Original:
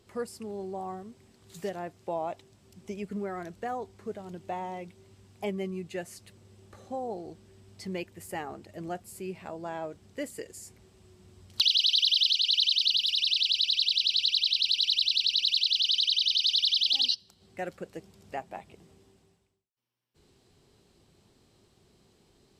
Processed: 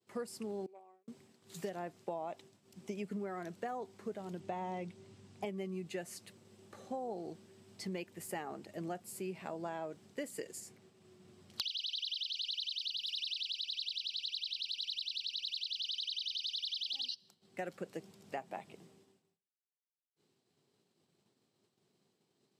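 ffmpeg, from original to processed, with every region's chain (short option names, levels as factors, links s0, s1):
-filter_complex "[0:a]asettb=1/sr,asplit=3[s0][s1][s2];[s0]atrim=end=0.664[s3];[s1]atrim=start=0.66:end=1.08,asetpts=PTS-STARTPTS,afade=t=in:d=0.004:c=qsin,afade=t=out:st=0.416:d=0.004:c=qsin,agate=range=0.0631:threshold=0.0224:ratio=16:release=100:detection=peak,highpass=f=430:t=q:w=2.1,equalizer=f=2400:t=o:w=0.35:g=14.5[s4];[s2]atrim=start=1.076[s5];[s3][s4]acrossfade=d=0.004:c1=hsin:c2=qsin[s6];[s6][s5]acrossfade=d=0.004:c1=qsin:c2=hsin,asettb=1/sr,asplit=3[s7][s8][s9];[s7]atrim=end=4.404[s10];[s8]atrim=start=4.4:end=5.45,asetpts=PTS-STARTPTS,afade=t=in:d=0.004:c=qsin,afade=t=out:st=1.046:d=0.004:c=qsin,lowpass=9000,lowshelf=f=140:g=10.5[s11];[s9]atrim=start=5.446[s12];[s10][s11]acrossfade=d=0.004:c1=hsin:c2=qsin[s13];[s13][s12]acrossfade=d=0.004:c1=qsin:c2=hsin,asettb=1/sr,asplit=3[s14][s15][s16];[s14]atrim=end=10.604[s17];[s15]atrim=start=10.6:end=12.36,asetpts=PTS-STARTPTS,afade=t=in:d=0.004:c=qsin,afade=t=out:st=1.756:d=0.004:c=qsin,highshelf=f=5100:g=-5.5,bandreject=f=920:w=15[s18];[s16]atrim=start=12.356[s19];[s17][s18]acrossfade=d=0.004:c1=hsin:c2=qsin[s20];[s20][s19]acrossfade=d=0.004:c1=qsin:c2=hsin,acompressor=threshold=0.0178:ratio=12,agate=range=0.0224:threshold=0.002:ratio=3:detection=peak,highpass=f=130:w=0.5412,highpass=f=130:w=1.3066,volume=0.891"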